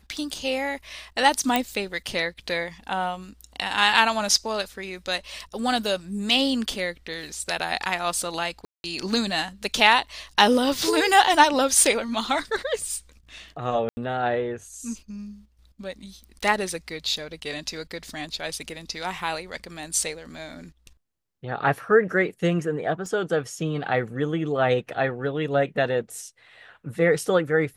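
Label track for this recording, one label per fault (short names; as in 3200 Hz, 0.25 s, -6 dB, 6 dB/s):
1.560000	1.560000	pop -7 dBFS
8.650000	8.840000	gap 0.191 s
13.890000	13.970000	gap 80 ms
23.060000	23.060000	gap 2.3 ms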